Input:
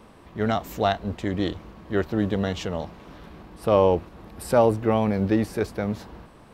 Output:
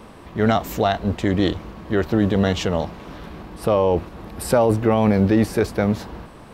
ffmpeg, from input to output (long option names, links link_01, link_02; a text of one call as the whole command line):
ffmpeg -i in.wav -af "alimiter=limit=-15dB:level=0:latency=1:release=30,volume=7.5dB" out.wav